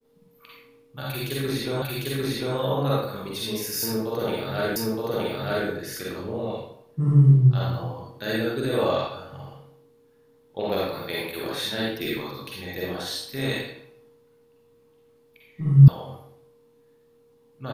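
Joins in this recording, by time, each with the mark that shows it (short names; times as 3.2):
1.82 repeat of the last 0.75 s
4.76 repeat of the last 0.92 s
15.88 sound cut off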